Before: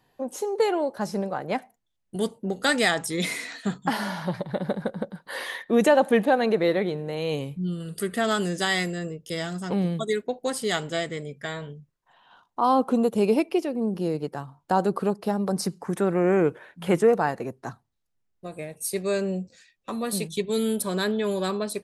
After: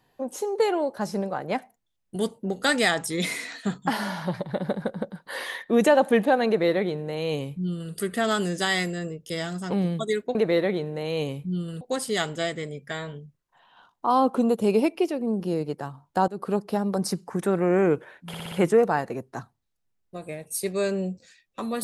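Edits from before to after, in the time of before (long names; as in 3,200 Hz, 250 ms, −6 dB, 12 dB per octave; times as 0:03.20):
0:06.47–0:07.93: duplicate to 0:10.35
0:14.82–0:15.10: fade in, from −22.5 dB
0:16.82: stutter 0.06 s, 5 plays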